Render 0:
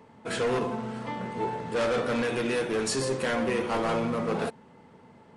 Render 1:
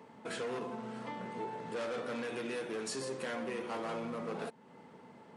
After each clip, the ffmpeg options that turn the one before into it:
-af "highpass=160,acompressor=threshold=0.00708:ratio=2,volume=0.891"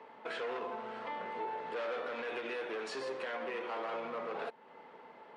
-filter_complex "[0:a]acrossover=split=390 4100:gain=0.112 1 0.0708[s0][s1][s2];[s0][s1][s2]amix=inputs=3:normalize=0,alimiter=level_in=3.55:limit=0.0631:level=0:latency=1:release=42,volume=0.282,volume=1.68"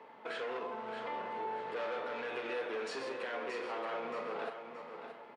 -filter_complex "[0:a]asplit=2[s0][s1];[s1]adelay=41,volume=0.299[s2];[s0][s2]amix=inputs=2:normalize=0,aecho=1:1:625|1250|1875|2500:0.376|0.132|0.046|0.0161,volume=0.891"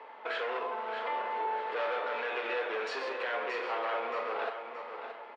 -af "highpass=510,lowpass=4100,volume=2.24"

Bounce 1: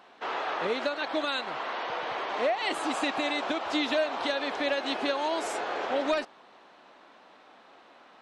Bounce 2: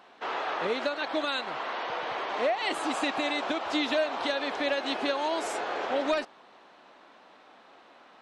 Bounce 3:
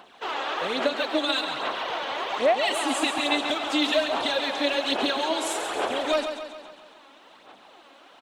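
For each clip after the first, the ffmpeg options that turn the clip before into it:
-af anull
-filter_complex "[0:a]aexciter=amount=1.5:drive=6.5:freq=2800,aphaser=in_gain=1:out_gain=1:delay=3.7:decay=0.56:speed=1.2:type=sinusoidal,asplit=2[s0][s1];[s1]aecho=0:1:137|274|411|548|685|822:0.398|0.215|0.116|0.0627|0.0339|0.0183[s2];[s0][s2]amix=inputs=2:normalize=0"

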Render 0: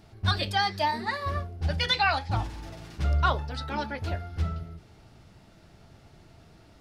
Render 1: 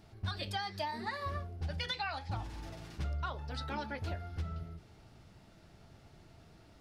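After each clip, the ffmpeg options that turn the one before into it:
-af "acompressor=threshold=0.0355:ratio=12,volume=0.596"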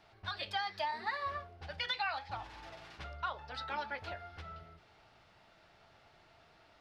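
-filter_complex "[0:a]acrossover=split=550 4600:gain=0.158 1 0.178[s0][s1][s2];[s0][s1][s2]amix=inputs=3:normalize=0,volume=1.41"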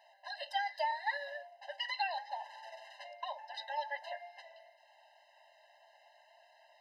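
-af "afftfilt=real='re*eq(mod(floor(b*sr/1024/530),2),1)':imag='im*eq(mod(floor(b*sr/1024/530),2),1)':win_size=1024:overlap=0.75,volume=1.33"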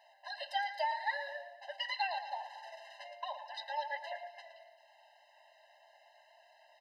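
-af "aecho=1:1:113|226|339|452|565:0.266|0.12|0.0539|0.0242|0.0109"

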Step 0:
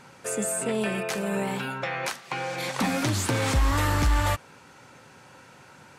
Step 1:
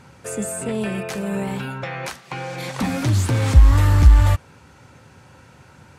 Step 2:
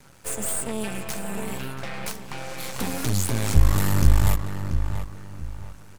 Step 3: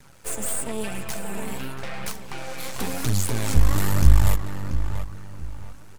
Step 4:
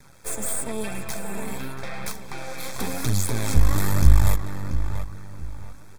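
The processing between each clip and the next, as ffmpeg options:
-af "lowshelf=f=380:g=4,acontrast=77,equalizer=f=70:t=o:w=1.4:g=13.5,volume=0.422"
-filter_complex "[0:a]aemphasis=mode=production:type=50fm,aeval=exprs='max(val(0),0)':c=same,asplit=2[s0][s1];[s1]adelay=684,lowpass=f=2600:p=1,volume=0.398,asplit=2[s2][s3];[s3]adelay=684,lowpass=f=2600:p=1,volume=0.33,asplit=2[s4][s5];[s5]adelay=684,lowpass=f=2600:p=1,volume=0.33,asplit=2[s6][s7];[s7]adelay=684,lowpass=f=2600:p=1,volume=0.33[s8];[s0][s2][s4][s6][s8]amix=inputs=5:normalize=0,volume=0.794"
-af "flanger=delay=0.5:depth=3.9:regen=64:speed=0.97:shape=triangular,volume=1.58"
-af "asuperstop=centerf=2900:order=12:qfactor=6.9"

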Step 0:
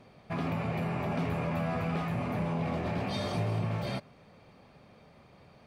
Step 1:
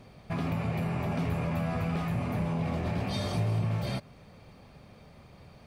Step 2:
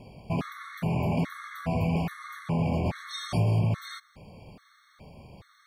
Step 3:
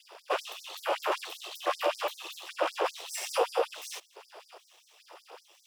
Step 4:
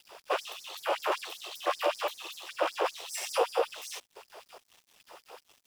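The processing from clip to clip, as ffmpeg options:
-filter_complex "[0:a]lowshelf=f=110:g=12,asplit=2[s0][s1];[s1]acompressor=threshold=0.02:ratio=6,volume=0.891[s2];[s0][s2]amix=inputs=2:normalize=0,highshelf=f=5200:g=8,volume=0.596"
-af "afftfilt=real='re*gt(sin(2*PI*1.2*pts/sr)*(1-2*mod(floor(b*sr/1024/1100),2)),0)':imag='im*gt(sin(2*PI*1.2*pts/sr)*(1-2*mod(floor(b*sr/1024/1100),2)),0)':win_size=1024:overlap=0.75,volume=1.68"
-af "aeval=exprs='abs(val(0))':c=same,afreqshift=250,afftfilt=real='re*gte(b*sr/1024,320*pow(4700/320,0.5+0.5*sin(2*PI*5.2*pts/sr)))':imag='im*gte(b*sr/1024,320*pow(4700/320,0.5+0.5*sin(2*PI*5.2*pts/sr)))':win_size=1024:overlap=0.75,volume=2"
-af "acrusher=bits=8:mix=0:aa=0.5"

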